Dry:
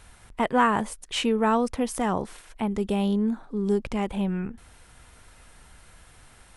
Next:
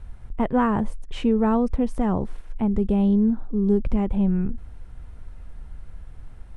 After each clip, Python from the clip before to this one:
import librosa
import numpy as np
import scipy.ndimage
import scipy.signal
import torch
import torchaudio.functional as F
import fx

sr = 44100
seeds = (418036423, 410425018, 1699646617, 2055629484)

y = fx.tilt_eq(x, sr, slope=-4.0)
y = F.gain(torch.from_numpy(y), -3.5).numpy()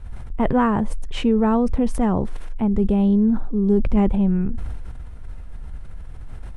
y = fx.sustainer(x, sr, db_per_s=26.0)
y = F.gain(torch.from_numpy(y), 2.0).numpy()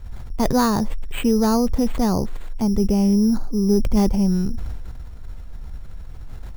y = np.repeat(x[::8], 8)[:len(x)]